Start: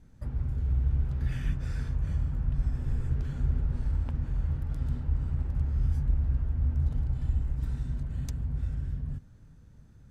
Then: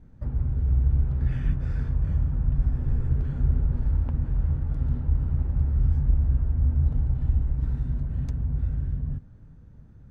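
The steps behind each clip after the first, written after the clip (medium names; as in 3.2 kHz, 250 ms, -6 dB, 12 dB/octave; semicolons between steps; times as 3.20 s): low-pass 1.1 kHz 6 dB/octave; trim +5 dB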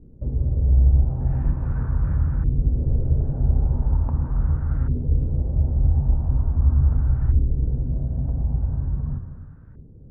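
gated-style reverb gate 350 ms flat, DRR 5.5 dB; LFO low-pass saw up 0.41 Hz 400–1600 Hz; trim +2.5 dB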